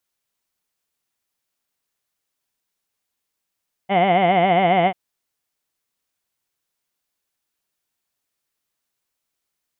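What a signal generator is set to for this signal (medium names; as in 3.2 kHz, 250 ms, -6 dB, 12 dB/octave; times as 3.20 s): formant vowel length 1.04 s, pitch 185 Hz, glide -0.5 st, vibrato 7.3 Hz, vibrato depth 1.4 st, F1 720 Hz, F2 2.1 kHz, F3 3 kHz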